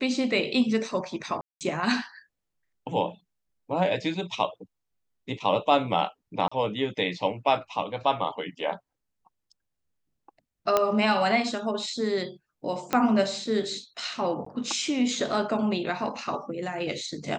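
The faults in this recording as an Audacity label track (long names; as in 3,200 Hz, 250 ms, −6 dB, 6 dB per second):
1.410000	1.610000	drop-out 198 ms
6.480000	6.510000	drop-out 35 ms
10.770000	10.770000	click −8 dBFS
12.930000	12.930000	click −10 dBFS
14.450000	14.460000	drop-out 14 ms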